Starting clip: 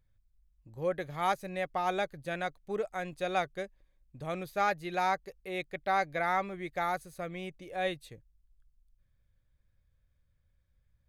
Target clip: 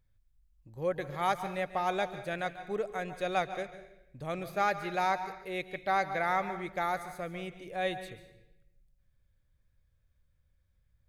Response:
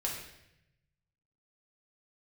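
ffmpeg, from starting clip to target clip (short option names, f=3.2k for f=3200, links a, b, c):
-filter_complex "[0:a]asplit=2[a][b];[1:a]atrim=start_sample=2205,adelay=141[c];[b][c]afir=irnorm=-1:irlink=0,volume=-14.5dB[d];[a][d]amix=inputs=2:normalize=0"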